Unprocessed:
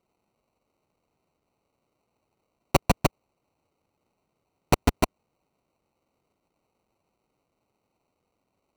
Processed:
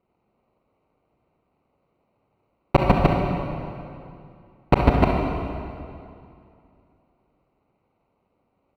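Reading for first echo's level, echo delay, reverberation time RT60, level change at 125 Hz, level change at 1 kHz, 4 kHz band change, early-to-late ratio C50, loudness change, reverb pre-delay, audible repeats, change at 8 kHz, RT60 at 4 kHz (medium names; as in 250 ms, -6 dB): -9.5 dB, 68 ms, 2.5 s, +7.5 dB, +6.0 dB, -2.5 dB, 1.0 dB, +4.0 dB, 31 ms, 1, under -15 dB, 2.0 s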